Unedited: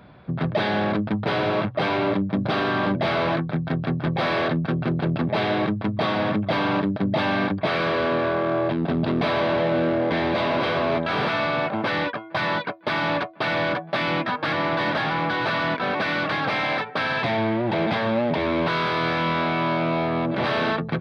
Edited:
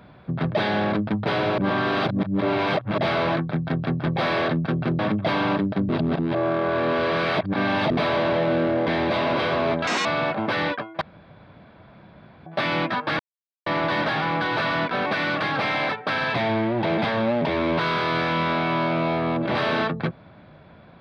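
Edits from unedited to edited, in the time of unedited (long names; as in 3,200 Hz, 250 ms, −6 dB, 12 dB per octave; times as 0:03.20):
0:01.58–0:02.98: reverse
0:04.99–0:06.23: remove
0:07.13–0:09.15: reverse
0:11.11–0:11.41: play speed 164%
0:12.37–0:13.82: fill with room tone
0:14.55: splice in silence 0.47 s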